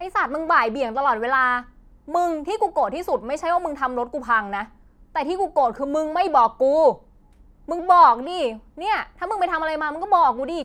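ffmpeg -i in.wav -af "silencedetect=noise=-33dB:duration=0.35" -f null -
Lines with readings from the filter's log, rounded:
silence_start: 1.62
silence_end: 2.08 | silence_duration: 0.46
silence_start: 4.64
silence_end: 5.15 | silence_duration: 0.51
silence_start: 6.95
silence_end: 7.68 | silence_duration: 0.74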